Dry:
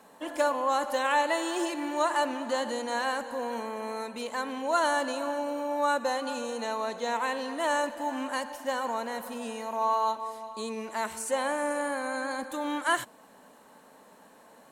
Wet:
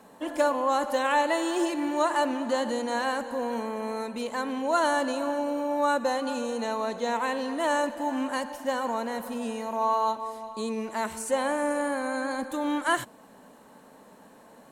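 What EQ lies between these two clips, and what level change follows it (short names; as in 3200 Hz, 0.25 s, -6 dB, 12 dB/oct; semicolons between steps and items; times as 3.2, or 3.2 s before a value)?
low shelf 390 Hz +8 dB; 0.0 dB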